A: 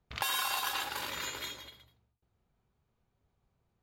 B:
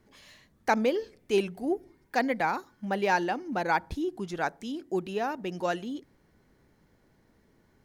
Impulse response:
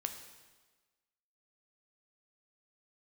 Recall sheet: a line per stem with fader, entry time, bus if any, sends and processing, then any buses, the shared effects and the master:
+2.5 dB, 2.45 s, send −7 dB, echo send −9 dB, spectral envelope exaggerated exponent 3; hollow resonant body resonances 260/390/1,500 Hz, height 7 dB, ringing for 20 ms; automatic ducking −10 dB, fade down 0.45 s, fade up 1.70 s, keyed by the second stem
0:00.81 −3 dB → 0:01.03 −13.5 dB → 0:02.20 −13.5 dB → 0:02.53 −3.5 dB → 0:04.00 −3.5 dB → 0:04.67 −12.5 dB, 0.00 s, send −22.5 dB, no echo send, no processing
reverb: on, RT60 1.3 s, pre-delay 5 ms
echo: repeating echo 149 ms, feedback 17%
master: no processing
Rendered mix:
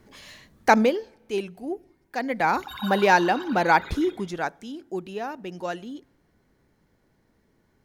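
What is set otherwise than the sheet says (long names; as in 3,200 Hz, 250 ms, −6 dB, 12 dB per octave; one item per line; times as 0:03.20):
stem A: send off
stem B −3.0 dB → +7.5 dB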